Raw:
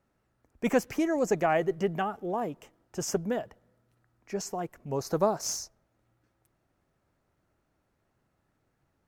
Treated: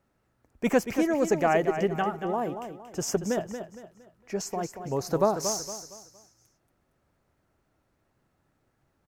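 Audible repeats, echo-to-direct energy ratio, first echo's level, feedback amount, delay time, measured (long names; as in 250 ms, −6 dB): 3, −8.5 dB, −9.0 dB, 35%, 231 ms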